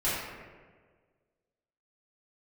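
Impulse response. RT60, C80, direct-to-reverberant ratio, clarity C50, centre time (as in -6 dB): 1.6 s, 1.5 dB, -13.0 dB, -1.0 dB, 93 ms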